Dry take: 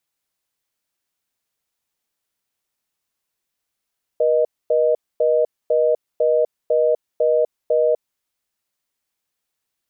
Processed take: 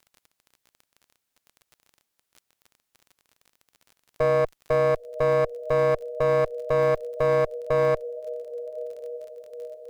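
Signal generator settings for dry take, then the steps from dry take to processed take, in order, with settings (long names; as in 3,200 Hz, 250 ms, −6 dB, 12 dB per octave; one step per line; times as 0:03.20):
call progress tone reorder tone, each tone −16.5 dBFS 3.94 s
feedback delay with all-pass diffusion 1,035 ms, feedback 58%, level −16 dB
asymmetric clip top −25.5 dBFS, bottom −13 dBFS
surface crackle 33 per second −38 dBFS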